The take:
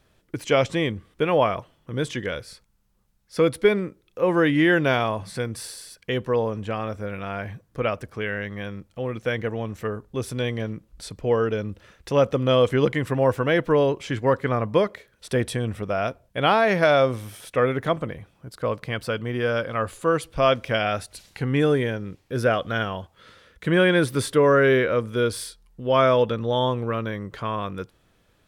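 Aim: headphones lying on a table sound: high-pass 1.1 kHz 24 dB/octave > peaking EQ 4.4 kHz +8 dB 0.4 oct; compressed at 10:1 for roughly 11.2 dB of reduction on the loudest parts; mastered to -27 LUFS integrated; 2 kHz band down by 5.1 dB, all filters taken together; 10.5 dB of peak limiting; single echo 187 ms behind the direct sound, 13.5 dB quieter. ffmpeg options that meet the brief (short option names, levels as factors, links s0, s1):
-af "equalizer=f=2000:t=o:g=-7,acompressor=threshold=0.0562:ratio=10,alimiter=level_in=1.19:limit=0.0631:level=0:latency=1,volume=0.841,highpass=f=1100:w=0.5412,highpass=f=1100:w=1.3066,equalizer=f=4400:t=o:w=0.4:g=8,aecho=1:1:187:0.211,volume=5.62"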